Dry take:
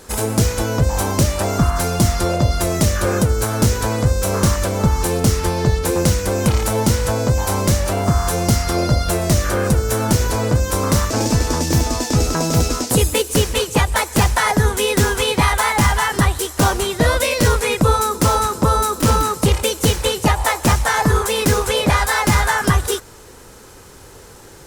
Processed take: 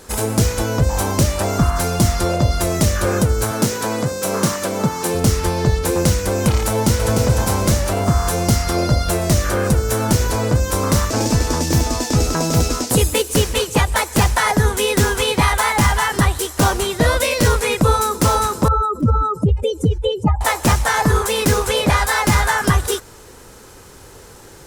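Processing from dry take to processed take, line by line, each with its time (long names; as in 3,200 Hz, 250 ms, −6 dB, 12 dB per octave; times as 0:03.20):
0:03.51–0:05.15: high-pass filter 140 Hz 24 dB per octave
0:06.69–0:07.14: delay throw 300 ms, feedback 55%, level −4.5 dB
0:18.68–0:20.41: expanding power law on the bin magnitudes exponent 2.3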